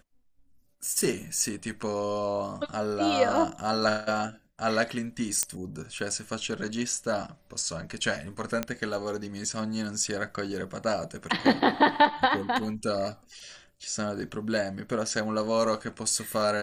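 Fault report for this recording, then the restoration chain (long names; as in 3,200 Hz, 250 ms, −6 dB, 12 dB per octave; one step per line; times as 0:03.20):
0:05.43: click −8 dBFS
0:08.63: click −13 dBFS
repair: click removal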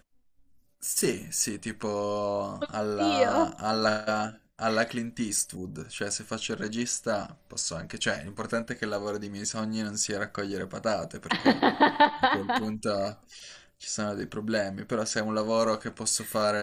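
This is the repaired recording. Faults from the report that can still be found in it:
none of them is left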